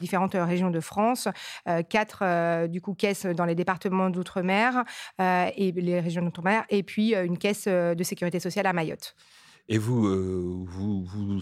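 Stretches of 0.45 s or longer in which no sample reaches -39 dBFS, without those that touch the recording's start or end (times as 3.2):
9.09–9.69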